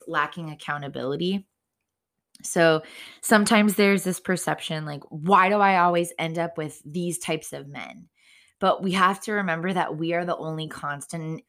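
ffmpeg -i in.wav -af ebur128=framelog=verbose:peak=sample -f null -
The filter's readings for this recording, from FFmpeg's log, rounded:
Integrated loudness:
  I:         -23.8 LUFS
  Threshold: -34.4 LUFS
Loudness range:
  LRA:         5.7 LU
  Threshold: -43.9 LUFS
  LRA low:   -27.0 LUFS
  LRA high:  -21.3 LUFS
Sample peak:
  Peak:       -5.3 dBFS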